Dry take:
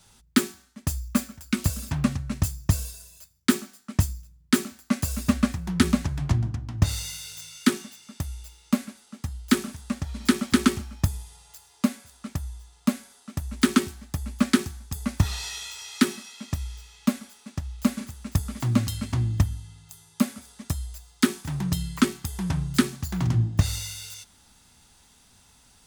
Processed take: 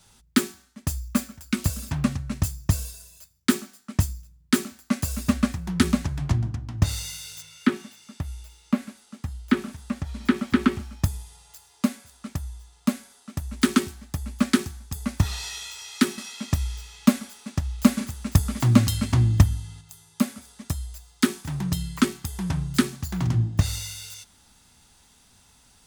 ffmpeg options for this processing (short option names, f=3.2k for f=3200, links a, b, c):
-filter_complex "[0:a]asettb=1/sr,asplit=3[a][b][c];[a]atrim=end=7.424[d];[b]atrim=start=7.42:end=10.85,asetpts=PTS-STARTPTS,afade=t=in:d=0.004:c=qsin,afade=t=out:st=3.426:d=0.004:c=qsin,acrossover=split=3200[e][f];[f]acompressor=threshold=-48dB:ratio=4:attack=1:release=60[g];[e][g]amix=inputs=2:normalize=0[h];[c]atrim=start=10.846[i];[d][h]acrossfade=d=0.004:c1=hsin:c2=qsin[j];[j][i]acrossfade=d=0.004:c1=qsin:c2=hsin,asplit=3[k][l][m];[k]atrim=end=16.182[n];[l]atrim=start=16.178:end=19.812,asetpts=PTS-STARTPTS,volume=5.5dB[o];[m]atrim=start=19.808[p];[n][o]acrossfade=d=0.004:c1=hsin:c2=hsin[q];[q][p]acrossfade=d=0.004:c1=hsin:c2=hsin"